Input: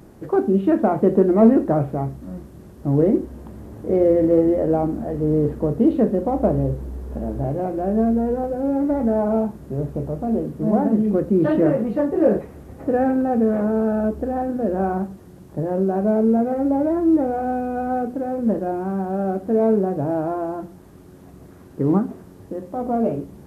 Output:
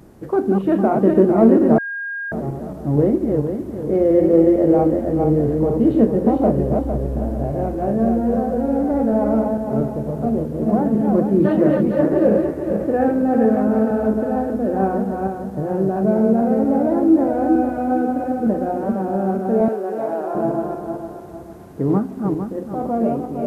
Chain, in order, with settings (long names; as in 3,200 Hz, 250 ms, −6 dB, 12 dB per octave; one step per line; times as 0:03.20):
feedback delay that plays each chunk backwards 228 ms, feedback 59%, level −3 dB
0:01.78–0:02.32: beep over 1,620 Hz −24 dBFS
0:19.68–0:20.35: high-pass filter 510 Hz 12 dB per octave